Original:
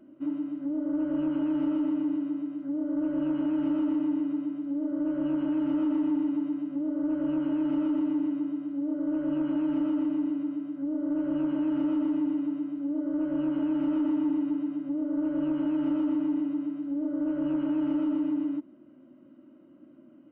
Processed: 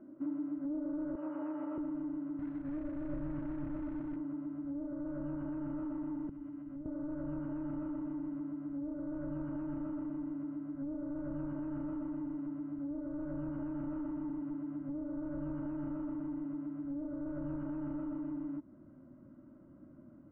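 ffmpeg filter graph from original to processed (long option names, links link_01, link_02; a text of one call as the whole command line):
ffmpeg -i in.wav -filter_complex "[0:a]asettb=1/sr,asplit=3[link_01][link_02][link_03];[link_01]atrim=end=1.154[link_04];[link_02]atrim=start=1.15:end=1.78,asetpts=PTS-STARTPTS,afade=type=in:duration=0.004:curve=qsin,afade=type=out:start_time=0.626:duration=0.004:curve=qsin,highpass=440,bandreject=frequency=1500:width=14[link_05];[link_03]atrim=start=1.776[link_06];[link_04][link_05]acrossfade=duration=0.004:curve1=hsin:curve2=qsin[link_07];[link_07][link_06]acrossfade=duration=0.004:curve1=qsin:curve2=hsin,asettb=1/sr,asplit=3[link_08][link_09][link_10];[link_08]atrim=end=2.394[link_11];[link_09]atrim=start=2.39:end=4.16,asetpts=PTS-STARTPTS,afade=type=in:duration=0.004:curve=qsin,afade=type=out:start_time=1.766:duration=0.004:curve=qsin,lowshelf=frequency=120:gain=11.5,acompressor=threshold=-27dB:ratio=12:attack=3.2:release=140:knee=1:detection=peak,acrusher=bits=4:mode=log:mix=0:aa=0.000001[link_12];[link_10]atrim=start=4.156[link_13];[link_11][link_12]acrossfade=duration=0.004:curve1=hsin:curve2=qsin[link_14];[link_14][link_13]acrossfade=duration=0.004:curve1=qsin:curve2=hsin,asettb=1/sr,asplit=3[link_15][link_16][link_17];[link_15]atrim=end=6.294[link_18];[link_16]atrim=start=6.29:end=6.86,asetpts=PTS-STARTPTS,afade=type=in:duration=0.004:curve=qsin,afade=type=out:start_time=0.566:duration=0.004:curve=qsin,acrossover=split=160|3000[link_19][link_20][link_21];[link_20]acompressor=threshold=-37dB:ratio=5:attack=3.2:release=140:knee=2.83:detection=peak[link_22];[link_19][link_22][link_21]amix=inputs=3:normalize=0,equalizer=frequency=650:width_type=o:width=2.6:gain=-4,bandreject=frequency=50:width_type=h:width=6,bandreject=frequency=100:width_type=h:width=6,bandreject=frequency=150:width_type=h:width=6,bandreject=frequency=200:width_type=h:width=6,bandreject=frequency=250:width_type=h:width=6,bandreject=frequency=300:width_type=h:width=6,bandreject=frequency=350:width_type=h:width=6[link_23];[link_17]atrim=start=6.856[link_24];[link_18][link_23]acrossfade=duration=0.004:curve1=hsin:curve2=qsin[link_25];[link_25][link_24]acrossfade=duration=0.004:curve1=qsin:curve2=hsin,lowpass=frequency=1700:width=0.5412,lowpass=frequency=1700:width=1.3066,alimiter=level_in=6dB:limit=-24dB:level=0:latency=1:release=169,volume=-6dB,asubboost=boost=10:cutoff=96" out.wav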